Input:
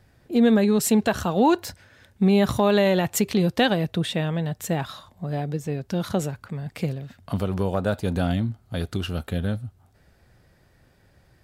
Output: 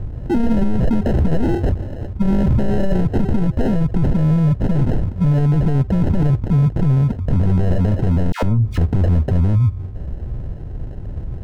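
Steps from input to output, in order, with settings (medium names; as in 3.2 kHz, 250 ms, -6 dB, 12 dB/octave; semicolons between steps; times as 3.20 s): in parallel at -9 dB: sine folder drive 13 dB, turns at -8.5 dBFS; on the sum: sample-and-hold 38×; tilt EQ -4.5 dB/octave; 8.32–8.78 s: phase dispersion lows, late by 106 ms, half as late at 980 Hz; peak limiter -13.5 dBFS, peak gain reduction 20 dB; trim +4.5 dB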